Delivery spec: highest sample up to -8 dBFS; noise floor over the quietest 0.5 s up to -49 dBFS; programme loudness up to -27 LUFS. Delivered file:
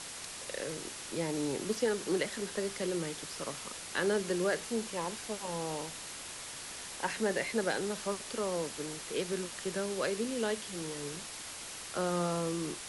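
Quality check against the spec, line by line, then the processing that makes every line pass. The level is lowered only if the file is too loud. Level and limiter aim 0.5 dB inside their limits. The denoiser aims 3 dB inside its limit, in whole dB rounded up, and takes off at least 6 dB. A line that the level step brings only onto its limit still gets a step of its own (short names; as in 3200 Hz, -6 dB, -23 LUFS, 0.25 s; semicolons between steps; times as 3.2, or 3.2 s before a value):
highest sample -19.0 dBFS: OK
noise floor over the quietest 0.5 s -44 dBFS: fail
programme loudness -35.5 LUFS: OK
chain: denoiser 8 dB, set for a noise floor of -44 dBFS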